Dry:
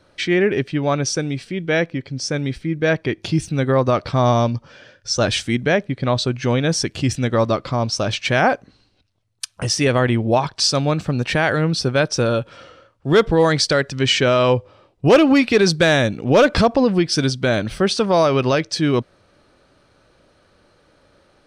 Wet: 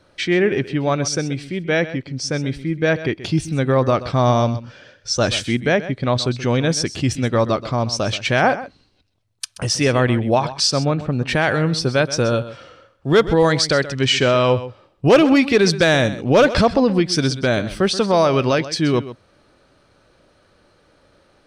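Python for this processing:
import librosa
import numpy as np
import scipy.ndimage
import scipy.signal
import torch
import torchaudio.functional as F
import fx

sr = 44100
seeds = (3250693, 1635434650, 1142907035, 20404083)

y = fx.lowpass(x, sr, hz=1800.0, slope=6, at=(10.7, 11.27), fade=0.02)
y = y + 10.0 ** (-14.5 / 20.0) * np.pad(y, (int(129 * sr / 1000.0), 0))[:len(y)]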